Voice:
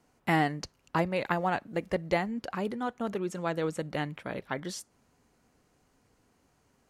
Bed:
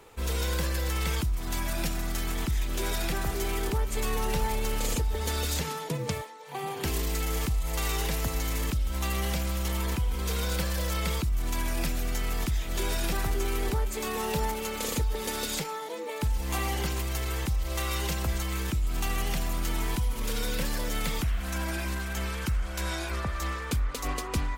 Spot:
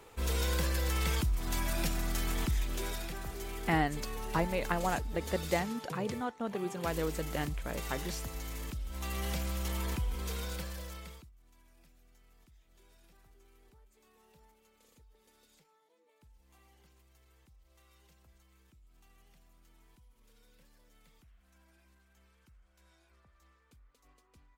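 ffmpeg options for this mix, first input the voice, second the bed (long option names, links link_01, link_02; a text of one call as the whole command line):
ffmpeg -i stem1.wav -i stem2.wav -filter_complex "[0:a]adelay=3400,volume=-3.5dB[link_01];[1:a]volume=3dB,afade=type=out:start_time=2.46:duration=0.63:silence=0.375837,afade=type=in:start_time=8.88:duration=0.45:silence=0.530884,afade=type=out:start_time=10:duration=1.32:silence=0.0354813[link_02];[link_01][link_02]amix=inputs=2:normalize=0" out.wav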